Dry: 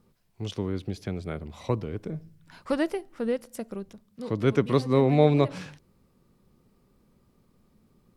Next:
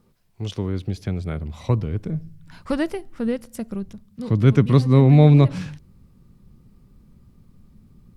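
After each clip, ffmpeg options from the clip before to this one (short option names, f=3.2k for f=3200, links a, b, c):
-af "asubboost=boost=4.5:cutoff=210,volume=3dB"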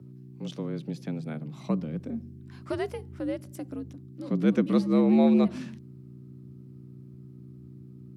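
-af "aeval=exprs='val(0)+0.0141*(sin(2*PI*60*n/s)+sin(2*PI*2*60*n/s)/2+sin(2*PI*3*60*n/s)/3+sin(2*PI*4*60*n/s)/4+sin(2*PI*5*60*n/s)/5)':c=same,afreqshift=73,volume=-8dB"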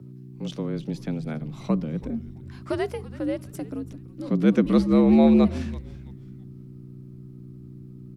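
-filter_complex "[0:a]asplit=4[a][b][c][d];[b]adelay=331,afreqshift=-140,volume=-17.5dB[e];[c]adelay=662,afreqshift=-280,volume=-27.4dB[f];[d]adelay=993,afreqshift=-420,volume=-37.3dB[g];[a][e][f][g]amix=inputs=4:normalize=0,volume=4dB"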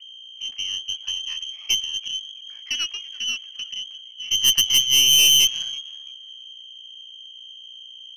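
-af "lowpass=f=2.8k:t=q:w=0.5098,lowpass=f=2.8k:t=q:w=0.6013,lowpass=f=2.8k:t=q:w=0.9,lowpass=f=2.8k:t=q:w=2.563,afreqshift=-3300,aeval=exprs='(tanh(6.31*val(0)+0.8)-tanh(0.8))/6.31':c=same,crystalizer=i=7:c=0,volume=-5.5dB"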